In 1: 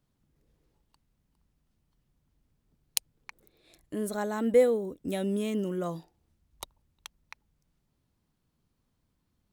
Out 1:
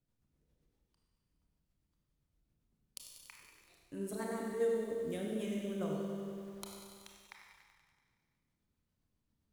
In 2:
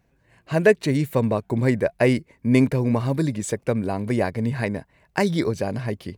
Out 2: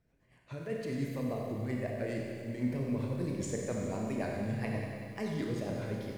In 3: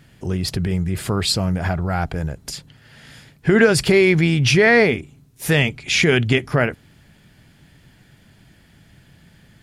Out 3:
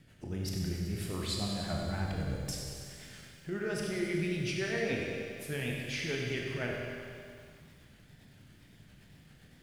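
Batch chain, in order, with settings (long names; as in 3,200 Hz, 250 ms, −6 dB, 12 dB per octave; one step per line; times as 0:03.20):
reversed playback
downward compressor, threshold −25 dBFS
reversed playback
shaped tremolo triangle 10 Hz, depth 45%
tape wow and flutter 150 cents
rotating-speaker cabinet horn 7.5 Hz
four-comb reverb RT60 1.9 s, combs from 25 ms, DRR −0.5 dB
feedback echo at a low word length 95 ms, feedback 80%, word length 9 bits, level −11 dB
level −6 dB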